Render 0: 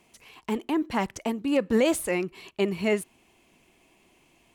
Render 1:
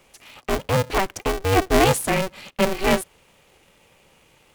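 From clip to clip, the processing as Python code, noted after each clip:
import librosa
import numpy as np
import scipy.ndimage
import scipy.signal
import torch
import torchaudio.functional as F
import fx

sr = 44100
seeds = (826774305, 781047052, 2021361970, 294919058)

y = scipy.signal.sosfilt(scipy.signal.butter(2, 60.0, 'highpass', fs=sr, output='sos'), x)
y = y * np.sign(np.sin(2.0 * np.pi * 190.0 * np.arange(len(y)) / sr))
y = y * librosa.db_to_amplitude(5.5)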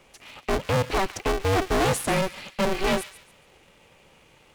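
y = fx.high_shelf(x, sr, hz=8300.0, db=-9.0)
y = np.clip(y, -10.0 ** (-20.5 / 20.0), 10.0 ** (-20.5 / 20.0))
y = fx.echo_wet_highpass(y, sr, ms=140, feedback_pct=31, hz=1800.0, wet_db=-12.5)
y = y * librosa.db_to_amplitude(1.0)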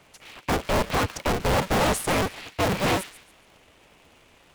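y = fx.cycle_switch(x, sr, every=2, mode='inverted')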